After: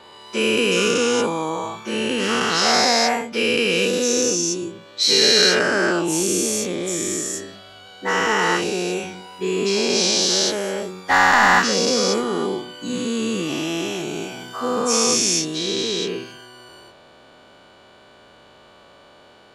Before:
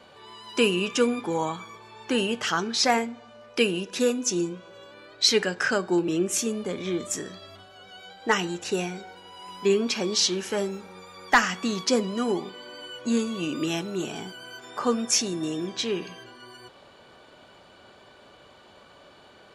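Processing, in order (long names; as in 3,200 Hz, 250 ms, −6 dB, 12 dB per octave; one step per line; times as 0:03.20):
every bin's largest magnitude spread in time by 480 ms
level −3 dB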